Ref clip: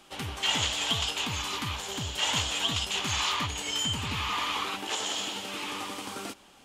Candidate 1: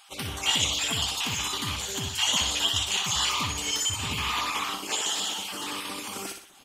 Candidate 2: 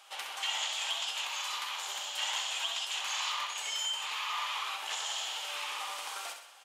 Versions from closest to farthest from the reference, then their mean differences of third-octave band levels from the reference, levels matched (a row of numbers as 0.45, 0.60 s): 1, 2; 3.5, 9.5 dB